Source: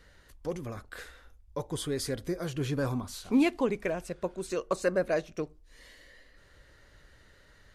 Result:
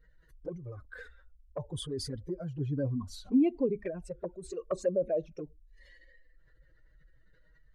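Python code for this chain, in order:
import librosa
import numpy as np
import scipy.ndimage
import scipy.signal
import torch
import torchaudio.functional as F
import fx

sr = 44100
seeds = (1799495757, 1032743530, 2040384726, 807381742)

y = fx.spec_expand(x, sr, power=1.9)
y = fx.env_flanger(y, sr, rest_ms=6.8, full_db=-25.0)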